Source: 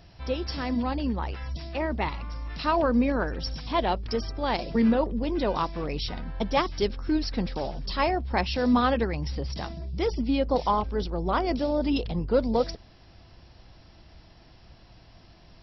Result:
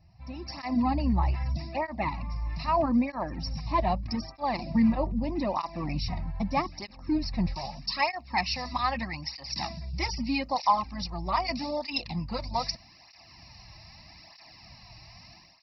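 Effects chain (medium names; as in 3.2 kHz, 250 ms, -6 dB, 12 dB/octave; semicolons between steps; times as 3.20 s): tilt shelf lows +3.5 dB, about 1.1 kHz, from 7.53 s lows -5.5 dB; level rider gain up to 16 dB; static phaser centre 2.2 kHz, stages 8; cancelling through-zero flanger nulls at 0.8 Hz, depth 4.4 ms; trim -6.5 dB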